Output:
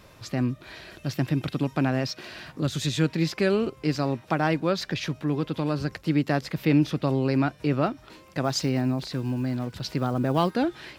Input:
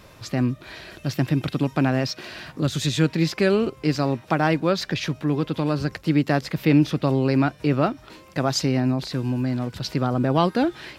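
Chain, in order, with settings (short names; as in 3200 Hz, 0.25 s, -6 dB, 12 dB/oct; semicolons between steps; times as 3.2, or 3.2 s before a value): 8.44–10.53 block floating point 7-bit; gain -3.5 dB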